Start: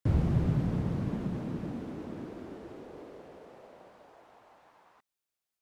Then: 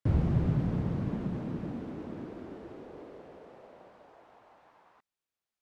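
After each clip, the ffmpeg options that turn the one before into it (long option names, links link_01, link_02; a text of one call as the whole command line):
ffmpeg -i in.wav -af "lowpass=frequency=4000:poles=1" out.wav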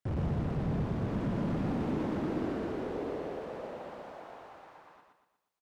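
ffmpeg -i in.wav -af "dynaudnorm=framelen=300:gausssize=9:maxgain=9dB,volume=31dB,asoftclip=hard,volume=-31dB,aecho=1:1:120|240|360|480|600|720:0.631|0.278|0.122|0.0537|0.0236|0.0104" out.wav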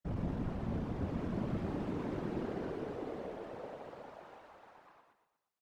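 ffmpeg -i in.wav -af "afftfilt=real='hypot(re,im)*cos(2*PI*random(0))':imag='hypot(re,im)*sin(2*PI*random(1))':win_size=512:overlap=0.75,volume=1dB" out.wav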